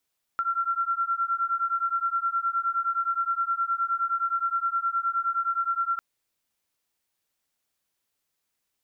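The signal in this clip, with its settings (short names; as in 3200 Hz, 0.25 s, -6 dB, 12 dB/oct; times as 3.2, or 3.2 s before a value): beating tones 1360 Hz, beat 9.6 Hz, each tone -27 dBFS 5.60 s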